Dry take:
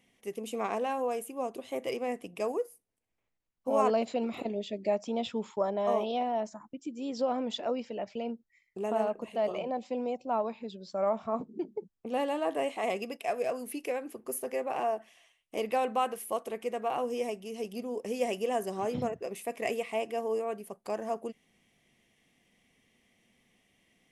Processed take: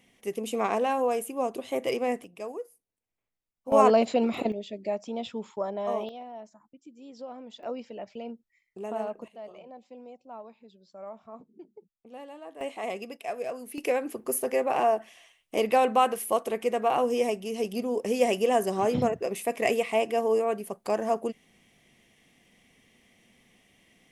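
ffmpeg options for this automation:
-af "asetnsamples=n=441:p=0,asendcmd='2.24 volume volume -5dB;3.72 volume volume 7dB;4.52 volume volume -1.5dB;6.09 volume volume -11dB;7.63 volume volume -3dB;9.28 volume volume -13dB;12.61 volume volume -2dB;13.78 volume volume 7dB',volume=1.88"

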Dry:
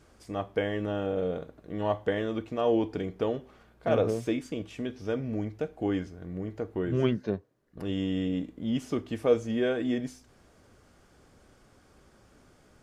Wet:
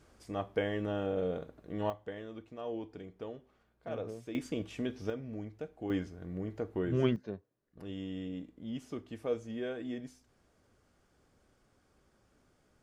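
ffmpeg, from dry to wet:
-af "asetnsamples=n=441:p=0,asendcmd='1.9 volume volume -14dB;4.35 volume volume -1.5dB;5.1 volume volume -9.5dB;5.9 volume volume -3dB;7.16 volume volume -10.5dB',volume=0.668"

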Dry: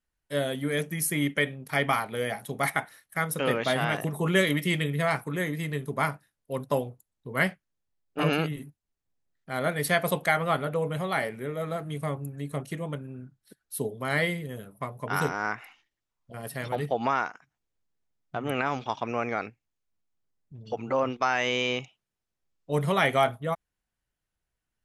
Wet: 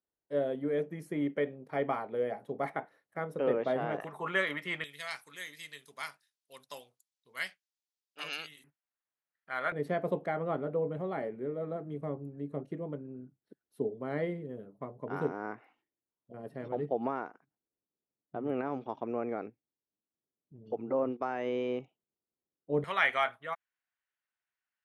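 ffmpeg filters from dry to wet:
-af "asetnsamples=n=441:p=0,asendcmd='4 bandpass f 1200;4.84 bandpass f 4900;8.64 bandpass f 1500;9.72 bandpass f 350;22.84 bandpass f 1800',bandpass=f=440:t=q:w=1.3:csg=0"

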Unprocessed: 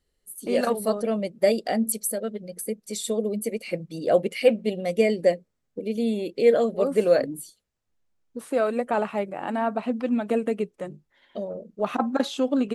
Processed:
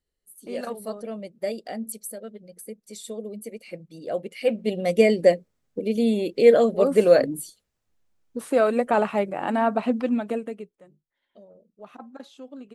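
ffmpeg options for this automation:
-af "volume=1.5,afade=t=in:st=4.36:d=0.52:silence=0.251189,afade=t=out:st=9.9:d=0.53:silence=0.316228,afade=t=out:st=10.43:d=0.35:silence=0.266073"

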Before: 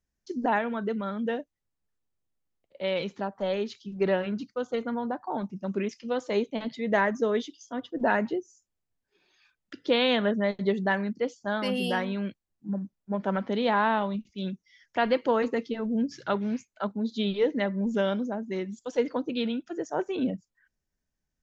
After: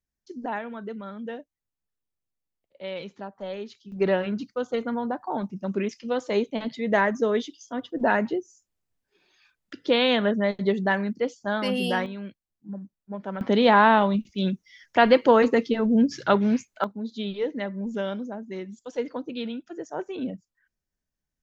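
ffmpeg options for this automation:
-af "asetnsamples=n=441:p=0,asendcmd='3.92 volume volume 2.5dB;12.06 volume volume -5dB;13.41 volume volume 7.5dB;16.84 volume volume -3dB',volume=0.531"

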